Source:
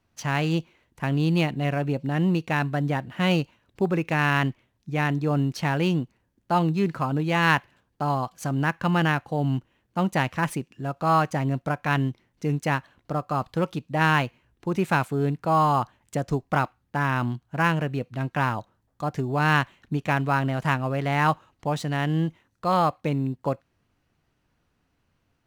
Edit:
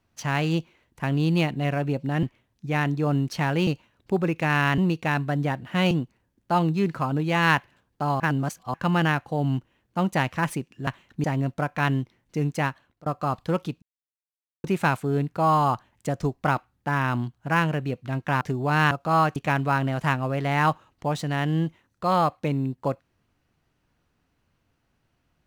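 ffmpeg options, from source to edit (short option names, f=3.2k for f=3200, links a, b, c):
-filter_complex "[0:a]asplit=15[a][b][c][d][e][f][g][h][i][j][k][l][m][n][o];[a]atrim=end=2.232[p];[b]atrim=start=4.468:end=5.912[q];[c]atrim=start=3.358:end=4.472[r];[d]atrim=start=2.228:end=3.362[s];[e]atrim=start=5.908:end=8.202[t];[f]atrim=start=8.198:end=8.742,asetpts=PTS-STARTPTS,areverse[u];[g]atrim=start=8.738:end=10.872[v];[h]atrim=start=19.598:end=19.972[w];[i]atrim=start=11.318:end=13.14,asetpts=PTS-STARTPTS,afade=t=out:st=1.222:d=0.6:c=qsin:silence=0.0668344[x];[j]atrim=start=13.14:end=13.9,asetpts=PTS-STARTPTS,afade=t=in:d=0.004:c=hsin:silence=0.0668344,afade=t=out:st=0.756:d=0.004:c=hsin[y];[k]atrim=start=13.9:end=14.72,asetpts=PTS-STARTPTS,volume=0[z];[l]atrim=start=14.72:end=18.492,asetpts=PTS-STARTPTS,afade=t=in:d=0.004:c=hsin[aa];[m]atrim=start=19.098:end=19.602[ab];[n]atrim=start=10.868:end=11.322[ac];[o]atrim=start=19.968[ad];[p][q]acrossfade=d=0.004:c1=hsin:c2=hsin[ae];[ae][r]acrossfade=d=0.004:c1=hsin:c2=hsin[af];[af][s]acrossfade=d=0.004:c1=hsin:c2=hsin[ag];[ag][t]acrossfade=d=0.004:c1=hsin:c2=hsin[ah];[ah][u]acrossfade=d=0.004:c1=hsin:c2=hsin[ai];[ai][v]acrossfade=d=0.004:c1=hsin:c2=hsin[aj];[aj][w]acrossfade=d=0.004:c1=hsin:c2=hsin[ak];[x][y][z][aa]concat=n=4:v=0:a=1[al];[ak][al]acrossfade=d=0.004:c1=hsin:c2=hsin[am];[am][ab]acrossfade=d=0.004:c1=hsin:c2=hsin[an];[an][ac]acrossfade=d=0.004:c1=hsin:c2=hsin[ao];[ao][ad]acrossfade=d=0.004:c1=hsin:c2=hsin"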